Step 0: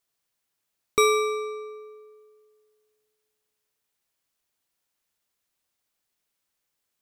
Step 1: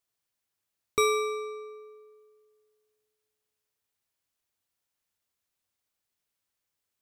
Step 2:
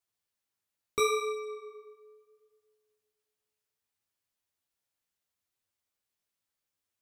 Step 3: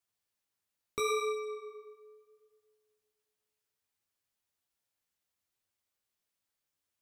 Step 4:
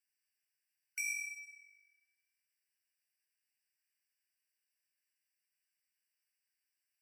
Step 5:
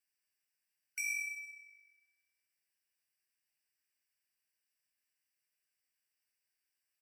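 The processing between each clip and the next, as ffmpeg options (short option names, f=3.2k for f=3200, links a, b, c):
-af "equalizer=f=95:t=o:w=0.37:g=8.5,volume=-4.5dB"
-af "flanger=delay=8.7:depth=9.8:regen=-4:speed=0.71:shape=sinusoidal"
-af "alimiter=limit=-22dB:level=0:latency=1:release=80"
-af "afftfilt=real='re*eq(mod(floor(b*sr/1024/1500),2),1)':imag='im*eq(mod(floor(b*sr/1024/1500),2),1)':win_size=1024:overlap=0.75,volume=2dB"
-af "aecho=1:1:64|128|192|256|320:0.237|0.109|0.0502|0.0231|0.0106"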